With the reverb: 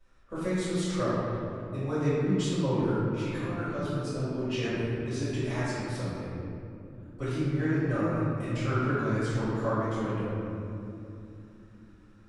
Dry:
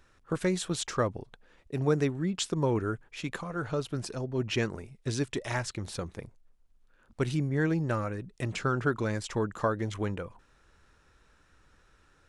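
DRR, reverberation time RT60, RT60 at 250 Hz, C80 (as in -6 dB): -16.0 dB, 2.9 s, 4.8 s, -2.0 dB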